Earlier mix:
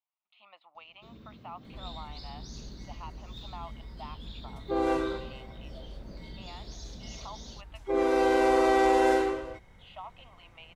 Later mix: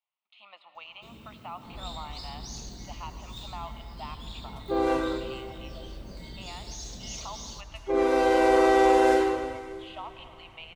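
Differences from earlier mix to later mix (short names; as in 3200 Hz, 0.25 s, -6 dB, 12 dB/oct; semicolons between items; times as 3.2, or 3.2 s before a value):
speech: add high shelf 2100 Hz +6.5 dB; first sound: remove running mean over 5 samples; reverb: on, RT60 2.5 s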